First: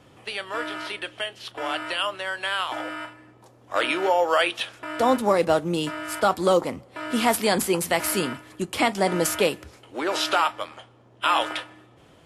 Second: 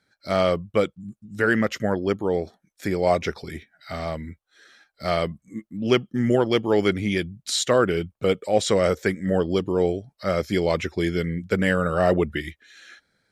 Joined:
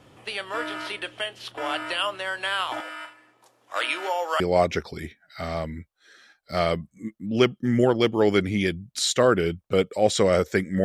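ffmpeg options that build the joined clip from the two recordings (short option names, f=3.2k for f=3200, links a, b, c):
-filter_complex "[0:a]asettb=1/sr,asplit=3[a][b][c];[a]atrim=end=2.804[d];[b]atrim=start=2.8:end=4.4,asetpts=PTS-STARTPTS,afade=t=in:d=0.004:c=qsin,afade=t=out:st=1.596:d=0.004:c=qsin,highpass=f=1.2k:p=1[e];[c]atrim=start=4.396[f];[d][e]acrossfade=d=0.004:c1=hsin:c2=qsin[g];[g][f]acrossfade=d=0.004:c1=qsin:c2=hsin,apad=whole_dur=10.84,atrim=end=10.84,atrim=end=4.402[h];[1:a]atrim=start=2.908:end=9.35[i];[h][i]acrossfade=d=0.004:c1=hsin:c2=hsin"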